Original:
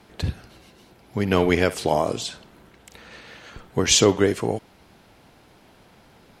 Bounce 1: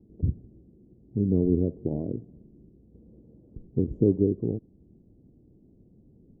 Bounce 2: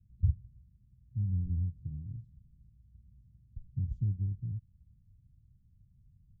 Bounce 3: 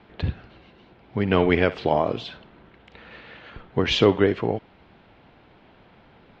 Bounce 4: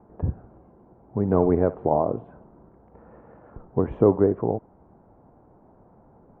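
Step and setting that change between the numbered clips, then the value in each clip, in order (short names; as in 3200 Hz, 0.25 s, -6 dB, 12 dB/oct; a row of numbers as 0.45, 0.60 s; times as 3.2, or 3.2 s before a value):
inverse Chebyshev low-pass, stop band from: 1600, 540, 12000, 4400 Hz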